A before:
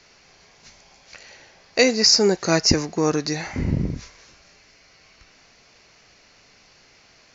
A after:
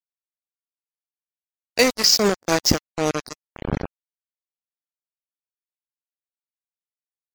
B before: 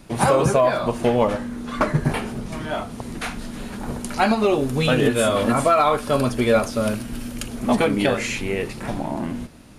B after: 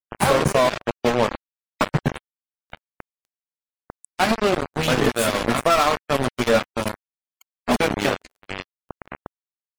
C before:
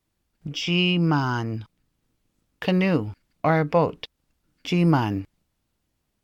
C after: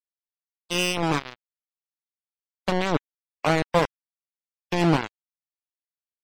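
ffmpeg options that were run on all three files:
-af "aeval=exprs='val(0)*gte(abs(val(0)),0.15)':c=same,afftdn=nr=31:nf=-36"

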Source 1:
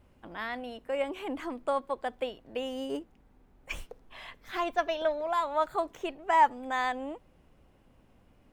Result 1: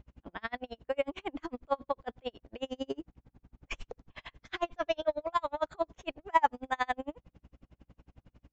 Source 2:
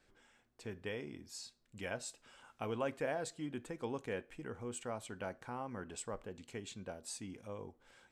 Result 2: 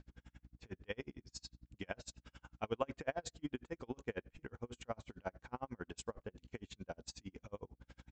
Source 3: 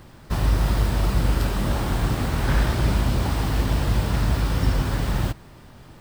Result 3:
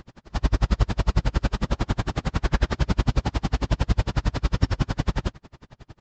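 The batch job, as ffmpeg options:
-af "aeval=exprs='val(0)+0.00158*(sin(2*PI*60*n/s)+sin(2*PI*2*60*n/s)/2+sin(2*PI*3*60*n/s)/3+sin(2*PI*4*60*n/s)/4+sin(2*PI*5*60*n/s)/5)':c=same,aresample=16000,aresample=44100,aeval=exprs='val(0)*pow(10,-39*(0.5-0.5*cos(2*PI*11*n/s))/20)':c=same,volume=4.5dB"

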